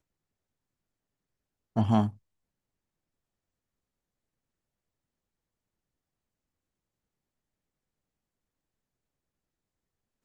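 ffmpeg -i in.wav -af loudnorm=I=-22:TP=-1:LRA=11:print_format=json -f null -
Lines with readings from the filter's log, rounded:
"input_i" : "-28.2",
"input_tp" : "-11.4",
"input_lra" : "8.4",
"input_thresh" : "-38.8",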